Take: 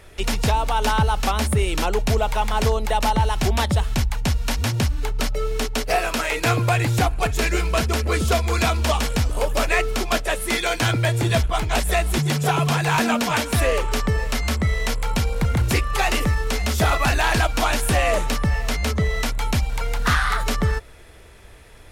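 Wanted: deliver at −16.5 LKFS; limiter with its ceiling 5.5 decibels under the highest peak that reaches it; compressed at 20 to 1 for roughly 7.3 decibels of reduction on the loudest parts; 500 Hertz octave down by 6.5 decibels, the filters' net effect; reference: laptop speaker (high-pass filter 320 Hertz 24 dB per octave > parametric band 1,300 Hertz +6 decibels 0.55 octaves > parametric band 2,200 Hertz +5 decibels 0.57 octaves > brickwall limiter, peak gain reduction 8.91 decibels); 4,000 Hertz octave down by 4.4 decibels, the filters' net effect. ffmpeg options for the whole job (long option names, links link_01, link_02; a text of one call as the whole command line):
ffmpeg -i in.wav -af "equalizer=frequency=500:width_type=o:gain=-9,equalizer=frequency=4000:width_type=o:gain=-7.5,acompressor=threshold=-23dB:ratio=20,alimiter=limit=-20dB:level=0:latency=1,highpass=frequency=320:width=0.5412,highpass=frequency=320:width=1.3066,equalizer=frequency=1300:width_type=o:width=0.55:gain=6,equalizer=frequency=2200:width_type=o:width=0.57:gain=5,volume=17.5dB,alimiter=limit=-6.5dB:level=0:latency=1" out.wav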